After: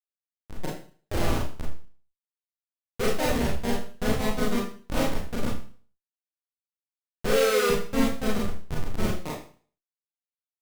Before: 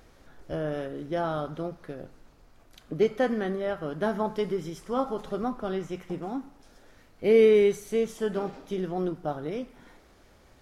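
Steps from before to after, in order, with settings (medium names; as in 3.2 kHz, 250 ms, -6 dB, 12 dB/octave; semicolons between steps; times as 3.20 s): Schmitt trigger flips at -22.5 dBFS; harmony voices +3 st -2 dB; Schroeder reverb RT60 0.43 s, combs from 26 ms, DRR -4 dB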